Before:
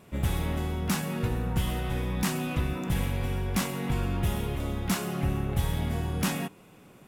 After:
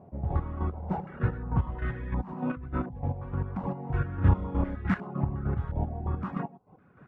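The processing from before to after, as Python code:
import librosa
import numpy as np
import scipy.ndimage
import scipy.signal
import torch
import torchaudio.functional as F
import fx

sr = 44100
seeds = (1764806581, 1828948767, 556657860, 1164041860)

y = fx.lower_of_two(x, sr, delay_ms=1.4, at=(0.71, 1.2))
y = y + 10.0 ** (-6.5 / 20.0) * np.pad(y, (int(100 * sr / 1000.0), 0))[:len(y)]
y = fx.over_compress(y, sr, threshold_db=-31.0, ratio=-1.0, at=(2.21, 3.4))
y = scipy.signal.sosfilt(scipy.signal.butter(2, 56.0, 'highpass', fs=sr, output='sos'), y)
y = fx.low_shelf(y, sr, hz=230.0, db=10.5)
y = fx.room_flutter(y, sr, wall_m=5.5, rt60_s=1.1, at=(4.15, 4.76))
y = fx.dereverb_blind(y, sr, rt60_s=0.51)
y = fx.comb_fb(y, sr, f0_hz=250.0, decay_s=1.3, harmonics='all', damping=0.0, mix_pct=40)
y = fx.chopper(y, sr, hz=3.3, depth_pct=60, duty_pct=30)
y = fx.filter_held_lowpass(y, sr, hz=2.8, low_hz=750.0, high_hz=1700.0)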